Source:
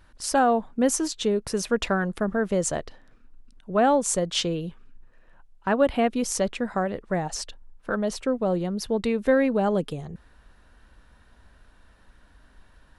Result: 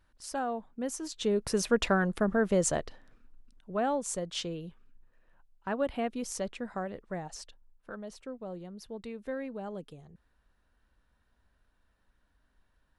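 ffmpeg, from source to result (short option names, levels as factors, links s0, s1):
-af "volume=0.794,afade=t=in:st=1.01:d=0.45:silence=0.281838,afade=t=out:st=2.73:d=1.11:silence=0.398107,afade=t=out:st=6.89:d=1.16:silence=0.473151"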